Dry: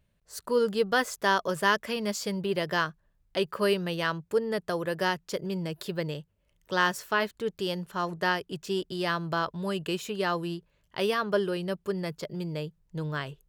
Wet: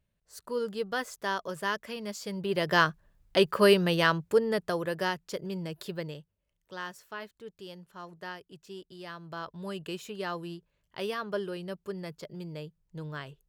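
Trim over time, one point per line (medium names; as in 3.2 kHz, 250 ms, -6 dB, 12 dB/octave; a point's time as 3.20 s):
2.20 s -7 dB
2.83 s +5 dB
4.03 s +5 dB
5.17 s -3.5 dB
5.90 s -3.5 dB
6.78 s -14 dB
9.15 s -14 dB
9.64 s -6.5 dB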